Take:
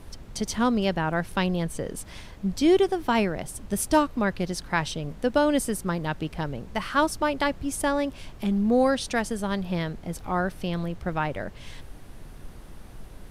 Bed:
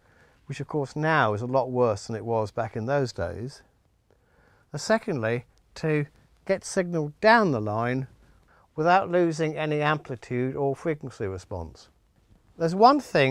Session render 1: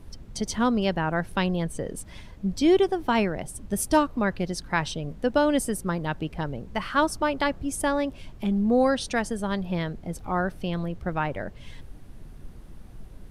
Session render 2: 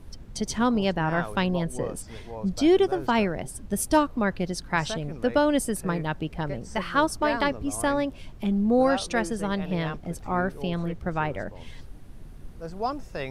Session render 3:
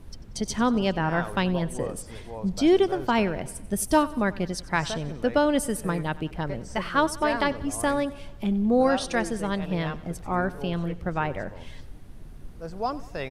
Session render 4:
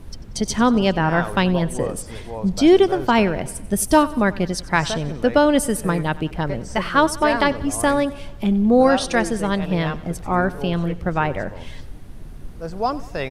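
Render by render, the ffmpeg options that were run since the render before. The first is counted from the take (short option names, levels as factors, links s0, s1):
-af "afftdn=nr=7:nf=-44"
-filter_complex "[1:a]volume=0.237[s0];[0:a][s0]amix=inputs=2:normalize=0"
-af "aecho=1:1:93|186|279|372|465:0.112|0.064|0.0365|0.0208|0.0118"
-af "volume=2.11,alimiter=limit=0.708:level=0:latency=1"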